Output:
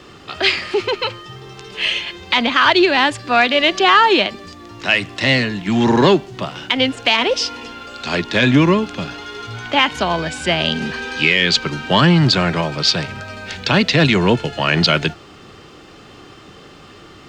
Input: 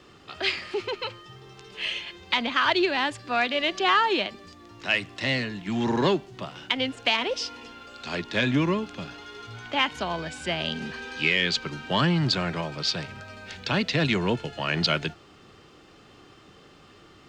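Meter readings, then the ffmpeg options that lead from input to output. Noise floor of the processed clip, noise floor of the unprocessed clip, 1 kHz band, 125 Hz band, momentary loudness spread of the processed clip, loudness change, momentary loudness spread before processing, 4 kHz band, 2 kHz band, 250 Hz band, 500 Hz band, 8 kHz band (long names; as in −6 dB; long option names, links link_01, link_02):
−42 dBFS, −53 dBFS, +10.0 dB, +10.5 dB, 16 LU, +10.0 dB, 16 LU, +10.0 dB, +10.0 dB, +11.0 dB, +10.5 dB, +10.5 dB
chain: -af "alimiter=level_in=12dB:limit=-1dB:release=50:level=0:latency=1,volume=-1dB"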